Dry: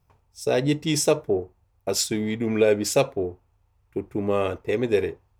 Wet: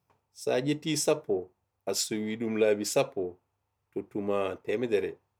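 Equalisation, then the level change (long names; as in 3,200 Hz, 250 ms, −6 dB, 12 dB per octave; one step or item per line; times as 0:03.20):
high-pass filter 150 Hz 12 dB per octave
−5.5 dB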